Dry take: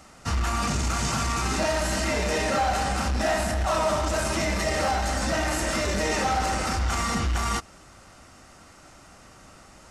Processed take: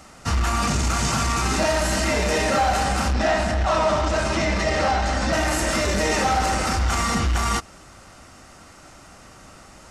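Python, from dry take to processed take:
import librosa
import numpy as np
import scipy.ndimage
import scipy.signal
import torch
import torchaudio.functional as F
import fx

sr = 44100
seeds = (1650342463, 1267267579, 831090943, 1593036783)

y = fx.lowpass(x, sr, hz=5500.0, slope=12, at=(3.13, 5.33))
y = y * librosa.db_to_amplitude(4.0)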